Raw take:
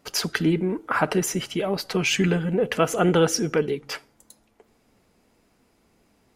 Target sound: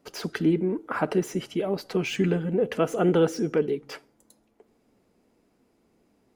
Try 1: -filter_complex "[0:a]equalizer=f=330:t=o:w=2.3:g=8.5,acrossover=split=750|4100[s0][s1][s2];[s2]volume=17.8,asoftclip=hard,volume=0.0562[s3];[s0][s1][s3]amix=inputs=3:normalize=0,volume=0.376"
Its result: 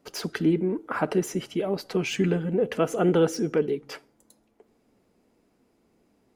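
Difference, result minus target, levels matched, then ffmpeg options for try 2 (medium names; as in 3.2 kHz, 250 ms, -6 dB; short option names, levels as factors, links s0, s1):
overload inside the chain: distortion -6 dB
-filter_complex "[0:a]equalizer=f=330:t=o:w=2.3:g=8.5,acrossover=split=750|4100[s0][s1][s2];[s2]volume=42.2,asoftclip=hard,volume=0.0237[s3];[s0][s1][s3]amix=inputs=3:normalize=0,volume=0.376"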